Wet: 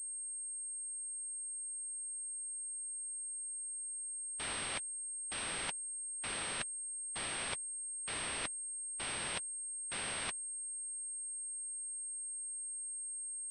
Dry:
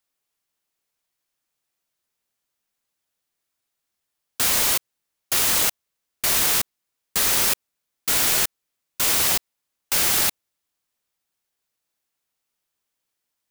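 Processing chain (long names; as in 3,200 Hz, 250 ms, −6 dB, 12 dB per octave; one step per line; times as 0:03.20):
spectral magnitudes quantised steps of 30 dB
reversed playback
downward compressor 5 to 1, threshold −35 dBFS, peak gain reduction 16 dB
reversed playback
dynamic equaliser 3,100 Hz, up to +5 dB, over −53 dBFS, Q 0.73
switching amplifier with a slow clock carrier 8,500 Hz
level −4 dB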